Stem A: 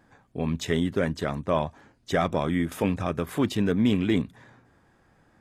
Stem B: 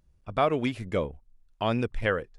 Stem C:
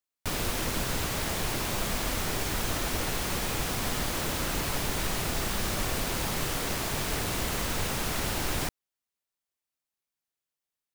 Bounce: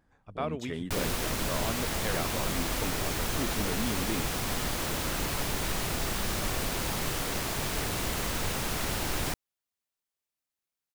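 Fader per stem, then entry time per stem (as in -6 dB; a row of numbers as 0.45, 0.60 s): -11.5, -9.5, -1.0 dB; 0.00, 0.00, 0.65 s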